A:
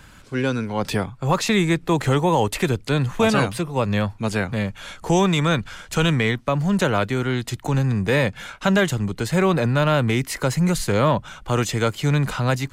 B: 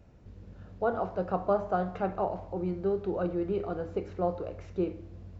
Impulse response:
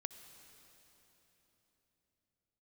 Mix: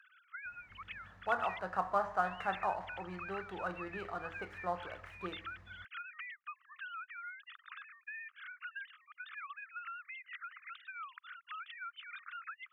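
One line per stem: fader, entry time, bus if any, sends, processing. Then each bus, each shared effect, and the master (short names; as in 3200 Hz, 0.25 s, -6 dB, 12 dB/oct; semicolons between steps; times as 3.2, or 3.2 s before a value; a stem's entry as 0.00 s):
-13.0 dB, 0.00 s, muted 1.59–2.24, no send, sine-wave speech; steep high-pass 1200 Hz 96 dB/oct; compressor 5:1, threshold -33 dBFS, peak gain reduction 13.5 dB
-1.0 dB, 0.45 s, no send, median filter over 9 samples; bell 1800 Hz +10.5 dB 0.39 oct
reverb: off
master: resonant low shelf 660 Hz -12 dB, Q 1.5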